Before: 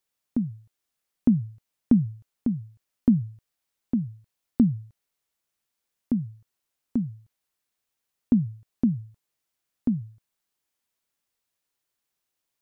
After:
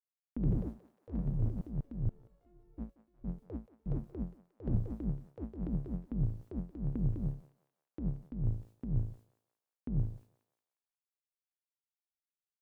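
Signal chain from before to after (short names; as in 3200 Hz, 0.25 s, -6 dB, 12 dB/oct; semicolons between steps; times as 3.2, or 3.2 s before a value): octaver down 2 oct, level -2 dB; expander -50 dBFS; negative-ratio compressor -30 dBFS, ratio -1; 2.09–4.68 metallic resonator 350 Hz, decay 0.83 s, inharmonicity 0.002; echoes that change speed 0.147 s, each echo +4 st, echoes 3; thinning echo 0.179 s, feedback 58%, high-pass 910 Hz, level -11 dB; Doppler distortion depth 0.36 ms; gain -3 dB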